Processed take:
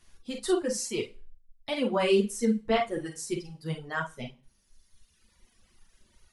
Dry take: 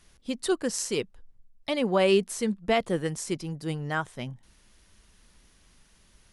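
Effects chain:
multi-voice chorus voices 6, 0.95 Hz, delay 11 ms, depth 3 ms
four-comb reverb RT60 0.36 s, combs from 33 ms, DRR 2.5 dB
reverb reduction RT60 1.7 s

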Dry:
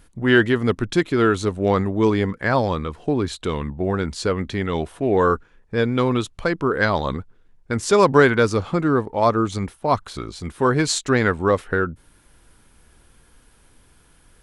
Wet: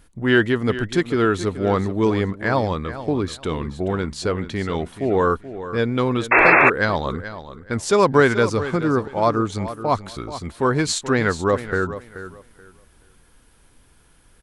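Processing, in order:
repeating echo 430 ms, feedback 22%, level −13 dB
sound drawn into the spectrogram noise, 0:06.31–0:06.70, 310–2,700 Hz −12 dBFS
level −1 dB

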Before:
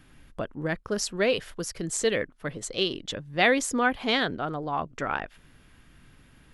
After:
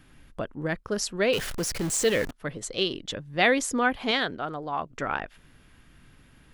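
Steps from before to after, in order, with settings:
0:01.33–0:02.31: converter with a step at zero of −29.5 dBFS
0:04.11–0:04.90: low-shelf EQ 330 Hz −6 dB

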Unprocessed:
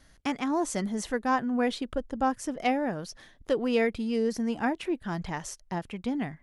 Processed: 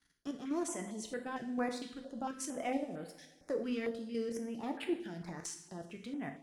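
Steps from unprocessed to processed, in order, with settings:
high-pass filter 280 Hz 6 dB per octave
leveller curve on the samples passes 1
output level in coarse steps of 13 dB
brickwall limiter −25.5 dBFS, peak gain reduction 7.5 dB
rotating-speaker cabinet horn 1.1 Hz, later 5 Hz, at 0:03.48
coupled-rooms reverb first 0.63 s, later 2.6 s, from −19 dB, DRR 4 dB
notch on a step sequencer 4.4 Hz 590–6,000 Hz
level −1.5 dB

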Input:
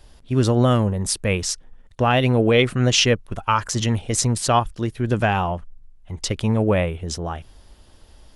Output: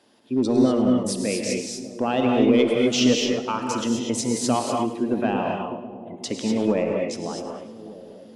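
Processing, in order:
dynamic equaliser 1,500 Hz, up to −6 dB, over −34 dBFS, Q 0.86
four-pole ladder high-pass 200 Hz, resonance 40%
gate on every frequency bin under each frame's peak −30 dB strong
in parallel at −4 dB: hard clipping −21 dBFS, distortion −14 dB
on the sum: high-shelf EQ 6,500 Hz −5.5 dB
echo with a time of its own for lows and highs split 730 Hz, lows 600 ms, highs 106 ms, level −13.5 dB
reverb whose tail is shaped and stops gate 270 ms rising, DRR 0.5 dB

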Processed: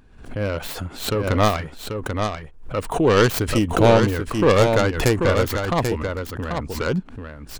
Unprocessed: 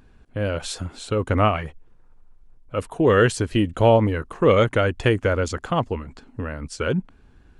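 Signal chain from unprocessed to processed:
stylus tracing distortion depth 0.28 ms
single-tap delay 788 ms −6 dB
background raised ahead of every attack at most 96 dB per second

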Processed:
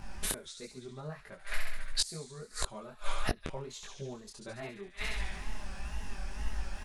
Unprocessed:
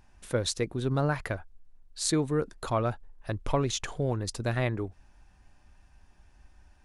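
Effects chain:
comb filter 4.9 ms, depth 99%
delay with a high-pass on its return 69 ms, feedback 71%, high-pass 2,400 Hz, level −4.5 dB
gate with flip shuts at −28 dBFS, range −32 dB
in parallel at +1 dB: speech leveller 2 s
on the sum: tape wow and flutter 100 cents
micro pitch shift up and down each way 53 cents
level +10 dB

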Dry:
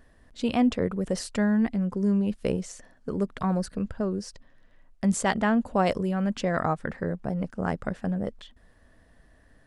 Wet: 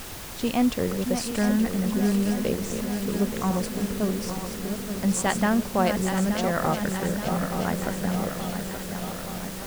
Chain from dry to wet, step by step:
feedback delay that plays each chunk backwards 438 ms, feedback 80%, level −7.5 dB
background noise pink −39 dBFS
high-shelf EQ 5,800 Hz +5 dB

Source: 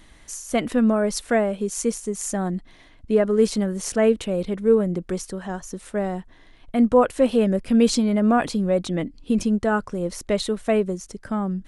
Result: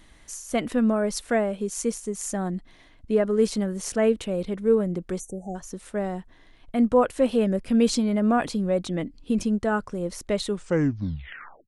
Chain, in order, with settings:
turntable brake at the end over 1.22 s
time-frequency box erased 0:05.19–0:05.56, 860–5,800 Hz
level −3 dB

